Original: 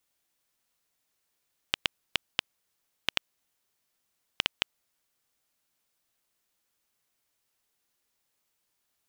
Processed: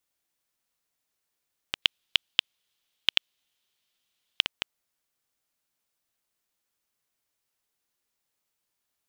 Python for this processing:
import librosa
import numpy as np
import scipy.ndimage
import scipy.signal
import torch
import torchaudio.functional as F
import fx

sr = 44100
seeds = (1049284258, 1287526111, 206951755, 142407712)

y = fx.peak_eq(x, sr, hz=3300.0, db=12.5, octaves=1.0, at=(1.82, 4.42))
y = y * 10.0 ** (-3.5 / 20.0)